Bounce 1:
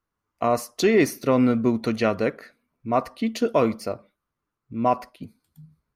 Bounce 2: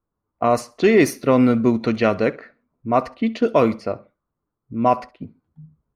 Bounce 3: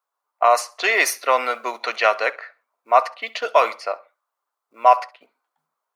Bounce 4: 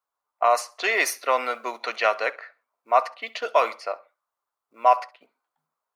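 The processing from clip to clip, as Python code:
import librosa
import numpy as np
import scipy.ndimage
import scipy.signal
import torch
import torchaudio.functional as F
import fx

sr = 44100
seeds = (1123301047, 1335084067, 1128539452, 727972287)

y1 = fx.env_lowpass(x, sr, base_hz=840.0, full_db=-16.0)
y1 = fx.echo_feedback(y1, sr, ms=66, feedback_pct=29, wet_db=-22)
y1 = y1 * librosa.db_to_amplitude(4.0)
y2 = fx.quant_float(y1, sr, bits=8)
y2 = scipy.signal.sosfilt(scipy.signal.butter(4, 700.0, 'highpass', fs=sr, output='sos'), y2)
y2 = y2 * librosa.db_to_amplitude(6.5)
y3 = fx.low_shelf(y2, sr, hz=180.0, db=8.0)
y3 = y3 * librosa.db_to_amplitude(-4.5)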